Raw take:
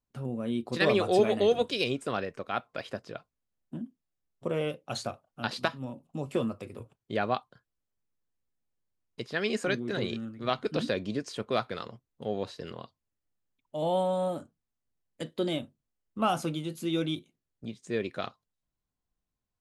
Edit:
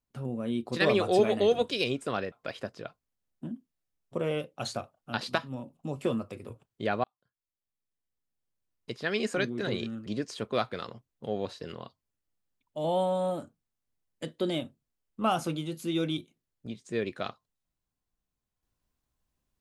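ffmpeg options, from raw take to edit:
-filter_complex "[0:a]asplit=4[s0][s1][s2][s3];[s0]atrim=end=2.322[s4];[s1]atrim=start=2.618:end=7.34,asetpts=PTS-STARTPTS,afade=t=out:st=4.718:d=0.004:c=hsin[s5];[s2]atrim=start=7.34:end=10.362,asetpts=PTS-STARTPTS,afade=t=in:d=1.87[s6];[s3]atrim=start=11.038[s7];[s5][s6]concat=n=2:v=0:a=1[s8];[s4][s8]acrossfade=d=0.004:c1=hsin:c2=hsin[s9];[s9][s7]acrossfade=d=0.004:c1=hsin:c2=hsin"

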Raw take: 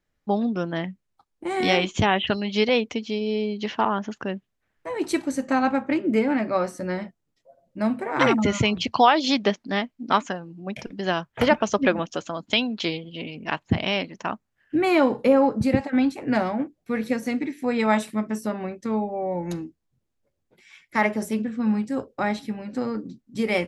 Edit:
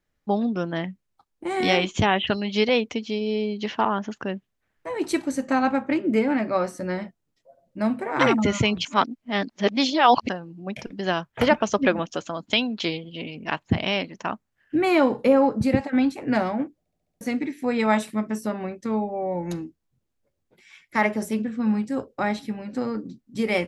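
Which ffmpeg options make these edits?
-filter_complex "[0:a]asplit=9[s0][s1][s2][s3][s4][s5][s6][s7][s8];[s0]atrim=end=8.852[s9];[s1]atrim=start=8.848:end=10.292,asetpts=PTS-STARTPTS,areverse[s10];[s2]atrim=start=10.288:end=16.862[s11];[s3]atrim=start=16.788:end=16.862[s12];[s4]atrim=start=16.788:end=16.862[s13];[s5]atrim=start=16.788:end=16.862[s14];[s6]atrim=start=16.788:end=16.862[s15];[s7]atrim=start=16.788:end=16.862[s16];[s8]atrim=start=17.208[s17];[s9][s10]acrossfade=d=0.004:c1=hsin:c2=hsin[s18];[s18][s11]acrossfade=d=0.004:c1=hsin:c2=hsin[s19];[s19][s12]acrossfade=d=0.004:c1=hsin:c2=hsin[s20];[s20][s13]acrossfade=d=0.004:c1=hsin:c2=hsin[s21];[s21][s14]acrossfade=d=0.004:c1=hsin:c2=hsin[s22];[s22][s15]acrossfade=d=0.004:c1=hsin:c2=hsin[s23];[s23][s16]acrossfade=d=0.004:c1=hsin:c2=hsin[s24];[s24][s17]acrossfade=d=0.004:c1=hsin:c2=hsin"

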